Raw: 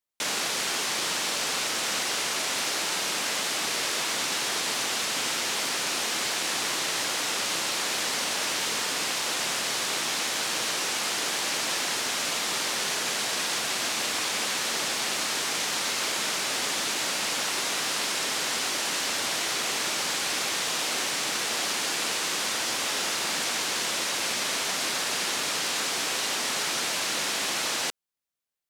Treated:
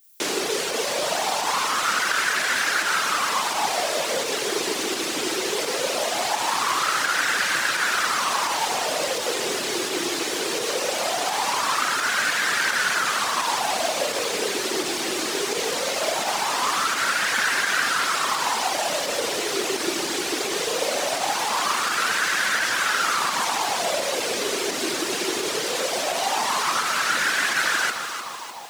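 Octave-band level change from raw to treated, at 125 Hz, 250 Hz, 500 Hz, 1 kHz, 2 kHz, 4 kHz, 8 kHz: +1.5 dB, +6.5 dB, +9.5 dB, +9.0 dB, +6.5 dB, +1.0 dB, +0.5 dB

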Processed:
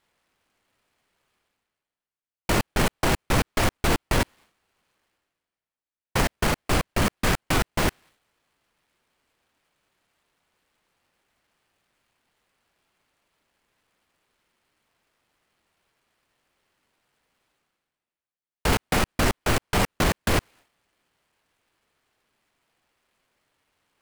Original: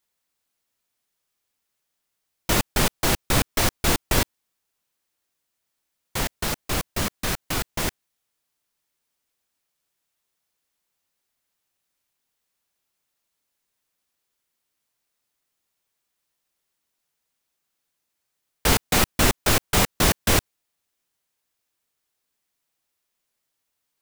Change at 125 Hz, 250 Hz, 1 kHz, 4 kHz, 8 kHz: +0.5 dB, +0.5 dB, +0.5 dB, -4.0 dB, -6.5 dB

